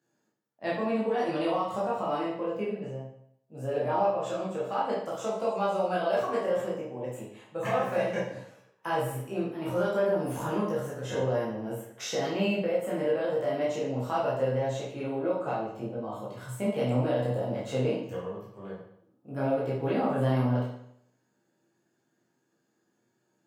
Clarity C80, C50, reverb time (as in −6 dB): 6.5 dB, 2.5 dB, 0.70 s